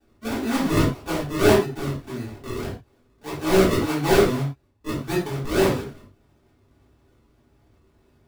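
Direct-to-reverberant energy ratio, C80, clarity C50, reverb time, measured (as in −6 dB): −9.5 dB, 10.5 dB, 4.5 dB, non-exponential decay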